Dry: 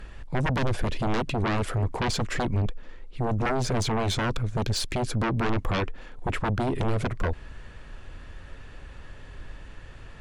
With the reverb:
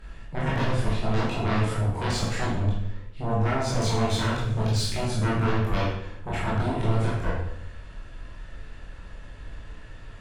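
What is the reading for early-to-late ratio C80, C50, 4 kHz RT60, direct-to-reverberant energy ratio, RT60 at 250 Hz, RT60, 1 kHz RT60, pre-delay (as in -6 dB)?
4.5 dB, 0.5 dB, 0.65 s, -7.5 dB, 0.90 s, 0.70 s, 0.70 s, 16 ms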